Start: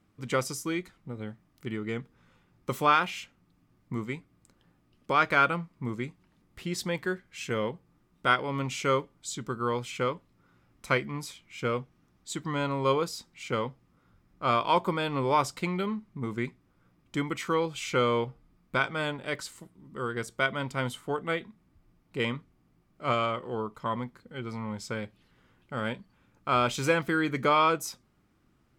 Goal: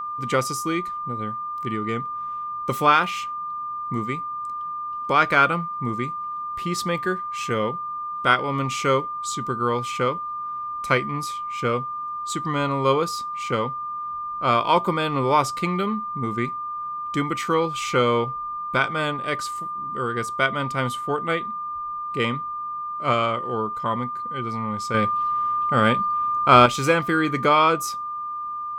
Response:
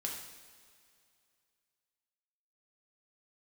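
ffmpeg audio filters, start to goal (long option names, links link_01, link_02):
-filter_complex "[0:a]aeval=exprs='val(0)+0.0224*sin(2*PI*1200*n/s)':channel_layout=same,asettb=1/sr,asplit=3[link_01][link_02][link_03];[link_01]atrim=end=24.944[link_04];[link_02]atrim=start=24.94:end=26.66,asetpts=PTS-STARTPTS,afade=type=in:duration=0.004:curve=qsin,afade=type=out:start_time=1.716:duration=0.004:curve=qsin,acontrast=81[link_05];[link_03]atrim=start=26.656[link_06];[link_04][link_05]acrossfade=duration=0.004:curve1=hsin:curve2=qsin[link_07];[link_07][link_06]acrossfade=duration=0.004:curve1=qsin:curve2=hsin,volume=5.5dB"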